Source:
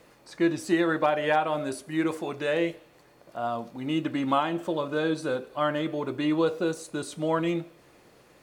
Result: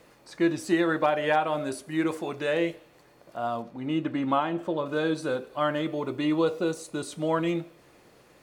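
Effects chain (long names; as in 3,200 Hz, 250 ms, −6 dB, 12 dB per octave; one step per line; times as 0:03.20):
0:03.62–0:04.86: high-shelf EQ 4,000 Hz −11 dB
0:05.86–0:07.09: notch filter 1,600 Hz, Q 9.4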